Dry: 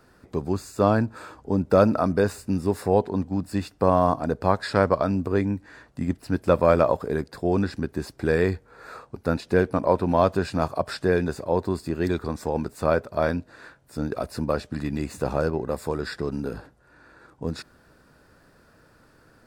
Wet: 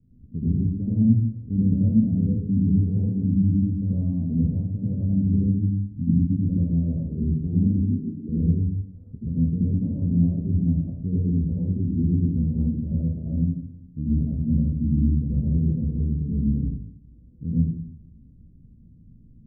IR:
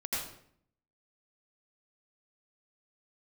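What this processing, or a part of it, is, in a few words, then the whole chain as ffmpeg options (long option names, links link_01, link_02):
club heard from the street: -filter_complex "[0:a]asettb=1/sr,asplit=3[link_01][link_02][link_03];[link_01]atrim=end=7.784[link_04];[link_02]atrim=start=7.78:end=8.29,asetpts=PTS-STARTPTS,afade=type=in:duration=0.004:curve=qsin,afade=type=out:start_time=0.506:duration=0.004:curve=qsin,highpass=frequency=210:width=0.5412,highpass=frequency=210:width=1.3066[link_05];[link_03]atrim=start=8.286[link_06];[link_04][link_05]acrossfade=duration=0.004:curve1=hsin:curve2=qsin[link_07];[link_07][link_06]acrossfade=duration=0.004:curve1=qsin:curve2=hsin,bandreject=frequency=360:width=12,alimiter=limit=-13dB:level=0:latency=1:release=237,lowpass=frequency=210:width=0.5412,lowpass=frequency=210:width=1.3066[link_08];[1:a]atrim=start_sample=2205[link_09];[link_08][link_09]afir=irnorm=-1:irlink=0,volume=6.5dB"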